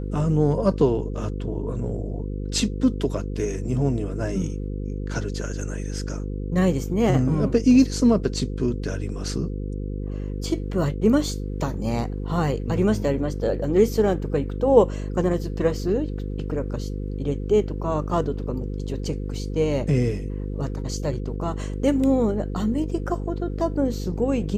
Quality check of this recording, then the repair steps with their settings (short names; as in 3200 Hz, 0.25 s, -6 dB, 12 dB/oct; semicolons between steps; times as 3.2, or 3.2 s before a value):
buzz 50 Hz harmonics 10 -29 dBFS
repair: de-hum 50 Hz, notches 10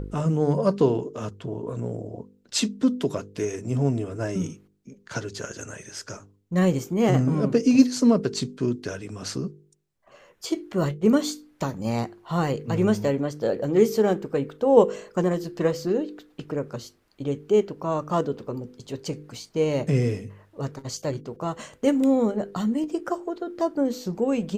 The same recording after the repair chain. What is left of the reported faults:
none